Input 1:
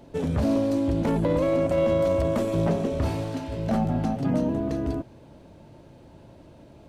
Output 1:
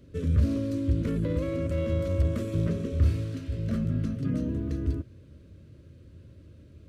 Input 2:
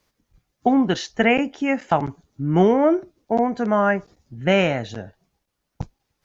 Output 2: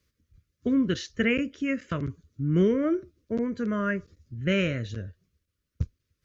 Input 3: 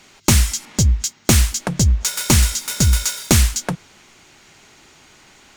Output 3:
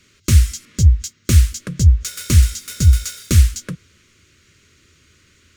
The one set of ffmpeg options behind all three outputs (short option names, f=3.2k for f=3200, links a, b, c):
-af "asuperstop=centerf=800:order=4:qfactor=1.2,equalizer=f=81:w=1.4:g=14.5,volume=-6.5dB"